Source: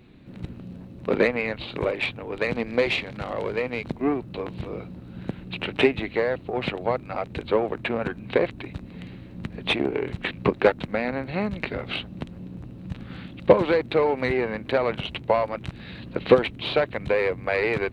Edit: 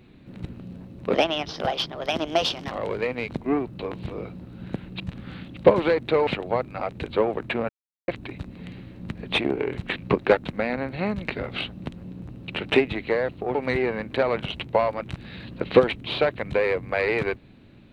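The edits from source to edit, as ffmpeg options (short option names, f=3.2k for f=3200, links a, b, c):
-filter_complex "[0:a]asplit=9[a][b][c][d][e][f][g][h][i];[a]atrim=end=1.144[j];[b]atrim=start=1.14:end=3.26,asetpts=PTS-STARTPTS,asetrate=59535,aresample=44100,atrim=end_sample=69253,asetpts=PTS-STARTPTS[k];[c]atrim=start=3.256:end=5.552[l];[d]atrim=start=12.828:end=14.102[m];[e]atrim=start=6.618:end=8.04,asetpts=PTS-STARTPTS,afade=t=out:st=1.418:d=0.004:c=hsin[n];[f]atrim=start=8.04:end=8.43,asetpts=PTS-STARTPTS,volume=0[o];[g]atrim=start=8.43:end=12.832,asetpts=PTS-STARTPTS,afade=t=in:d=0.004:c=hsin[p];[h]atrim=start=5.548:end=6.622[q];[i]atrim=start=14.098[r];[j][k]acrossfade=d=0.004:c1=hsin:c2=hsin[s];[s][l]acrossfade=d=0.004:c1=hsin:c2=hsin[t];[t][m]acrossfade=d=0.004:c1=hsin:c2=hsin[u];[n][o][p]concat=n=3:v=0:a=1[v];[u][v]acrossfade=d=0.004:c1=hsin:c2=hsin[w];[w][q]acrossfade=d=0.004:c1=hsin:c2=hsin[x];[x][r]acrossfade=d=0.004:c1=hsin:c2=hsin"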